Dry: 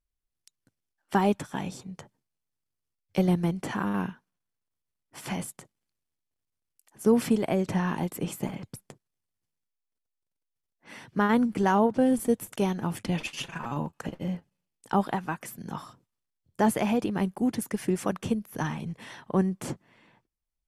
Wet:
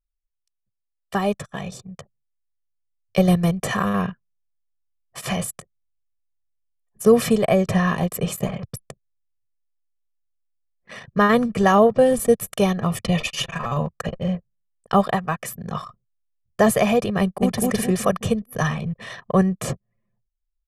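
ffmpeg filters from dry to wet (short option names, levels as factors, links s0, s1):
-filter_complex "[0:a]asettb=1/sr,asplit=3[s0][s1][s2];[s0]atrim=end=3.254[s3];[s1]atrim=start=3.25:end=3.94,asetpts=PTS-STARTPTS,afade=t=in:d=0.004:c=qsin,afade=t=out:st=0.686:d=0.004:c=qsin,highshelf=f=5300:g=5.5[s4];[s2]atrim=start=3.936[s5];[s3][s4]acrossfade=d=0.004:c1=hsin:c2=qsin[s6];[s6][s5]acrossfade=d=0.004:c1=qsin:c2=hsin,asettb=1/sr,asplit=3[s7][s8][s9];[s7]atrim=end=12.854[s10];[s8]atrim=start=12.85:end=13.37,asetpts=PTS-STARTPTS,afade=t=in:d=0.004:c=qsin,afade=t=out:st=0.516:d=0.004:c=qsin,asuperstop=centerf=1600:order=4:qfactor=7.4[s11];[s9]atrim=start=13.366[s12];[s10][s11]acrossfade=d=0.004:c1=hsin:c2=qsin[s13];[s13][s12]acrossfade=d=0.004:c1=qsin:c2=hsin,asplit=2[s14][s15];[s15]afade=t=in:st=17.21:d=0.01,afade=t=out:st=17.62:d=0.01,aecho=0:1:210|420|630|840|1050:0.944061|0.377624|0.15105|0.0604199|0.024168[s16];[s14][s16]amix=inputs=2:normalize=0,anlmdn=0.0398,aecho=1:1:1.7:0.82,dynaudnorm=f=940:g=5:m=2.37"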